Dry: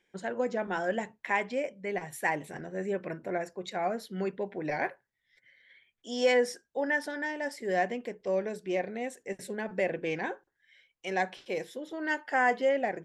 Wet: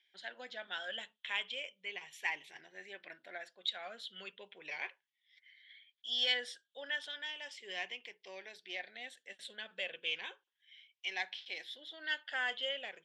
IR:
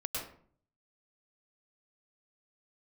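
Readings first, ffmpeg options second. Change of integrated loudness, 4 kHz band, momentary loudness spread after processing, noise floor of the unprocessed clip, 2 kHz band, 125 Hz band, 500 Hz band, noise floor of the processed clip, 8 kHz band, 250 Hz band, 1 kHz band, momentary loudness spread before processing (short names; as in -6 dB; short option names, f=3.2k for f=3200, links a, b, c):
-8.0 dB, +7.5 dB, 15 LU, -79 dBFS, -6.0 dB, under -25 dB, -19.5 dB, under -85 dBFS, -10.0 dB, -25.5 dB, -16.5 dB, 10 LU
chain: -af "afftfilt=real='re*pow(10,7/40*sin(2*PI*(0.76*log(max(b,1)*sr/1024/100)/log(2)-(-0.35)*(pts-256)/sr)))':imag='im*pow(10,7/40*sin(2*PI*(0.76*log(max(b,1)*sr/1024/100)/log(2)-(-0.35)*(pts-256)/sr)))':win_size=1024:overlap=0.75,bandpass=f=3.3k:t=q:w=5.9:csg=0,volume=11dB"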